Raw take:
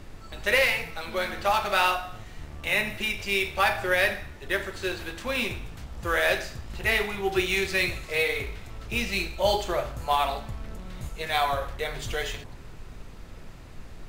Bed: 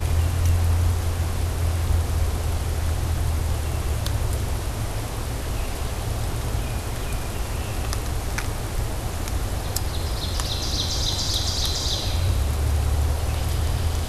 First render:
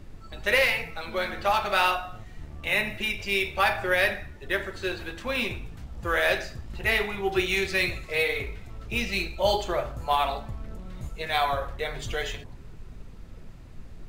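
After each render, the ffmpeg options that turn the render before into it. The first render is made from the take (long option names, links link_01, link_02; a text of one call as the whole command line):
ffmpeg -i in.wav -af "afftdn=noise_reduction=7:noise_floor=-44" out.wav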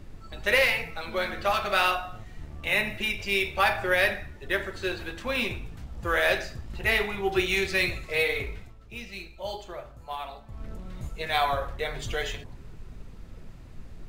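ffmpeg -i in.wav -filter_complex "[0:a]asettb=1/sr,asplit=3[link_01][link_02][link_03];[link_01]atrim=end=1.344[link_04];[link_02]atrim=start=1.34:end=1.96,asetpts=PTS-STARTPTS,afade=type=in:duration=0.004:curve=qsin,afade=type=out:start_time=0.616:duration=0.004:curve=qsin,bandreject=frequency=870:width=6.9[link_05];[link_03]atrim=start=1.956[link_06];[link_04][link_05]acrossfade=duration=0.004:curve1=hsin:curve2=qsin[link_07];[link_07][link_06]acrossfade=duration=0.004:curve1=qsin:curve2=hsin,asplit=3[link_08][link_09][link_10];[link_08]atrim=end=8.75,asetpts=PTS-STARTPTS,afade=type=out:start_time=8.58:duration=0.17:silence=0.266073[link_11];[link_09]atrim=start=8.75:end=10.47,asetpts=PTS-STARTPTS,volume=-11.5dB[link_12];[link_10]atrim=start=10.47,asetpts=PTS-STARTPTS,afade=type=in:duration=0.17:silence=0.266073[link_13];[link_11][link_12][link_13]concat=n=3:v=0:a=1" out.wav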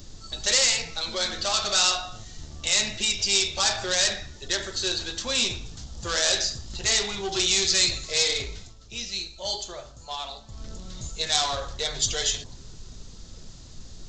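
ffmpeg -i in.wav -af "aresample=16000,asoftclip=type=tanh:threshold=-24.5dB,aresample=44100,aexciter=amount=12.2:drive=1.2:freq=3500" out.wav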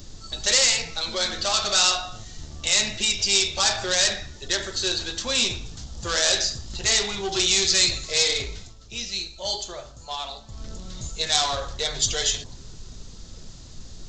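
ffmpeg -i in.wav -af "volume=2dB" out.wav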